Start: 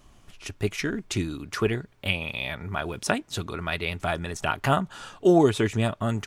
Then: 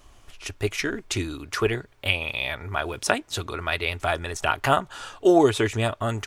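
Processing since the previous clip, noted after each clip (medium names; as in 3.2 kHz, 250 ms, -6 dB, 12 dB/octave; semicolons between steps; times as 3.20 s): peaking EQ 180 Hz -13 dB 0.88 oct; trim +3.5 dB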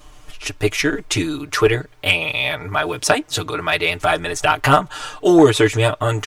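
comb 6.6 ms, depth 94%; saturation -6.5 dBFS, distortion -20 dB; trim +5.5 dB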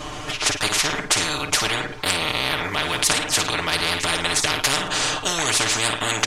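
distance through air 57 m; flutter echo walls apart 9.1 m, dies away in 0.25 s; spectrum-flattening compressor 10:1; trim -1 dB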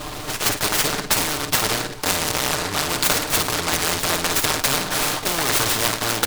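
delay time shaken by noise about 2.6 kHz, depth 0.11 ms; trim +1 dB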